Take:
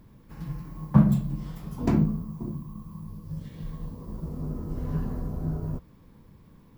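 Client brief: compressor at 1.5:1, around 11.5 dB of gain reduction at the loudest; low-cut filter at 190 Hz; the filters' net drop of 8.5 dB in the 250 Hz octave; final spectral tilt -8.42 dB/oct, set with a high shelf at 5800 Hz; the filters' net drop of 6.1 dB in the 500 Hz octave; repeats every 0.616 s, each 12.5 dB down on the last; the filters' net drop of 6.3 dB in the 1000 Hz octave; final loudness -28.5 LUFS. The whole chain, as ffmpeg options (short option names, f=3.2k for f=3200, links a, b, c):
-af "highpass=190,equalizer=f=250:t=o:g=-7.5,equalizer=f=500:t=o:g=-3.5,equalizer=f=1k:t=o:g=-6,highshelf=f=5.8k:g=-7.5,acompressor=threshold=-53dB:ratio=1.5,aecho=1:1:616|1232|1848:0.237|0.0569|0.0137,volume=18dB"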